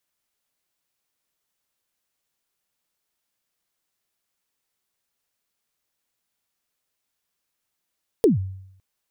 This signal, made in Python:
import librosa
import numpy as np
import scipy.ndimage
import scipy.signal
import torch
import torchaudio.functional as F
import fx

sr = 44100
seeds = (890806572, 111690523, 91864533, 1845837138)

y = fx.drum_kick(sr, seeds[0], length_s=0.56, level_db=-10.0, start_hz=490.0, end_hz=95.0, sweep_ms=140.0, decay_s=0.75, click=True)